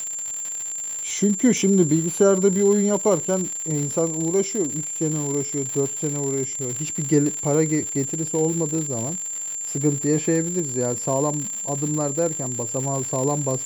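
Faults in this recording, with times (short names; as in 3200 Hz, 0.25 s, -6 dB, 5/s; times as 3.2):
crackle 150/s -26 dBFS
tone 7300 Hz -27 dBFS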